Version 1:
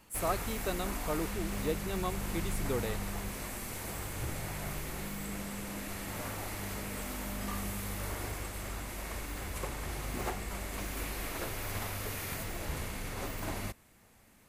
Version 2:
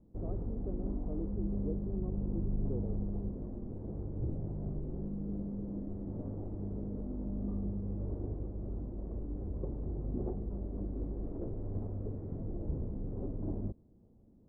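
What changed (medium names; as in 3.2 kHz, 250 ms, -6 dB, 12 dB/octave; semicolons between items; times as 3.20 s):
background +7.5 dB; master: add four-pole ladder low-pass 500 Hz, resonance 20%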